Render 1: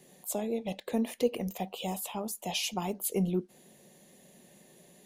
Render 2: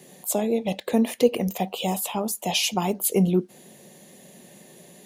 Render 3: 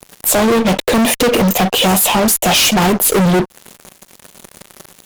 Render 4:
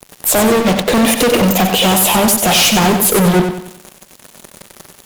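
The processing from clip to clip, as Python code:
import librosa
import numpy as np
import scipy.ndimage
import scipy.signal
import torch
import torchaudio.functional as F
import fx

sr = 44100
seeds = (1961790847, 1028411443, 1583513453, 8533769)

y1 = scipy.signal.sosfilt(scipy.signal.butter(2, 66.0, 'highpass', fs=sr, output='sos'), x)
y1 = y1 * 10.0 ** (9.0 / 20.0)
y2 = fx.fuzz(y1, sr, gain_db=36.0, gate_db=-43.0)
y2 = y2 * 10.0 ** (3.0 / 20.0)
y3 = fx.echo_feedback(y2, sr, ms=94, feedback_pct=39, wet_db=-7.0)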